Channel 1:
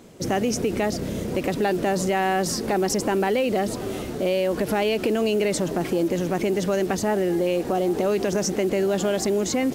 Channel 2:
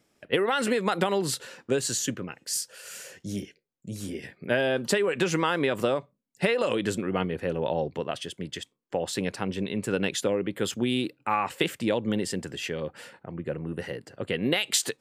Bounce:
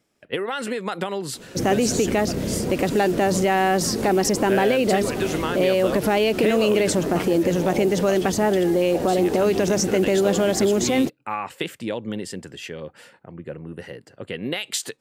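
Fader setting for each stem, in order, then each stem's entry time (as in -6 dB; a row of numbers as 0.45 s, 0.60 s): +3.0 dB, -2.0 dB; 1.35 s, 0.00 s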